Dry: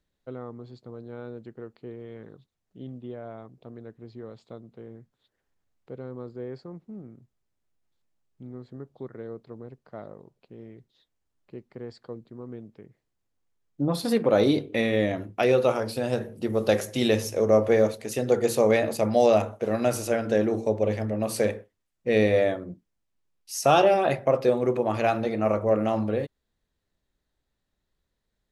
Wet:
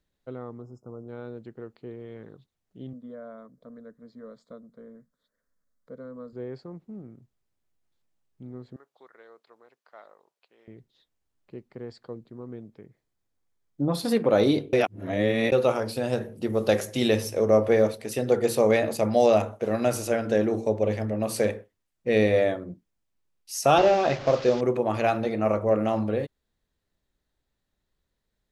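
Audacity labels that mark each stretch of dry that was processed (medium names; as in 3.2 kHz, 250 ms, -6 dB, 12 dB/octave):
0.620000	1.090000	spectral selection erased 1.5–5 kHz
2.930000	6.330000	static phaser centre 540 Hz, stages 8
8.760000	10.680000	high-pass 1 kHz
12.500000	13.940000	band-stop 2.8 kHz, Q 14
14.730000	15.520000	reverse
17.100000	18.640000	band-stop 6.7 kHz, Q 8.6
23.780000	24.610000	one-bit delta coder 32 kbps, step -31.5 dBFS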